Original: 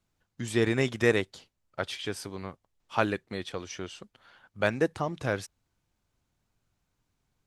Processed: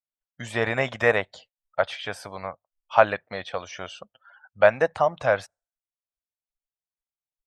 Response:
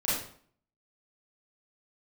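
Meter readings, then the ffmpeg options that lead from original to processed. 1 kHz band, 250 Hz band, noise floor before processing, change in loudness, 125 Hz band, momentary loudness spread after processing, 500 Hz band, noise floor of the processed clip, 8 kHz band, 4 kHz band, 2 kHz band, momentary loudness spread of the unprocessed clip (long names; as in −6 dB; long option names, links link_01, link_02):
+10.0 dB, −5.5 dB, −79 dBFS, +6.0 dB, −2.0 dB, 17 LU, +7.0 dB, below −85 dBFS, can't be measured, +1.0 dB, +6.5 dB, 16 LU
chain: -filter_complex "[0:a]afftdn=noise_reduction=36:noise_floor=-53,acrossover=split=2700[link_01][link_02];[link_02]acompressor=threshold=-49dB:ratio=4:attack=1:release=60[link_03];[link_01][link_03]amix=inputs=2:normalize=0,lowshelf=frequency=470:width_type=q:width=3:gain=-8.5,volume=7dB"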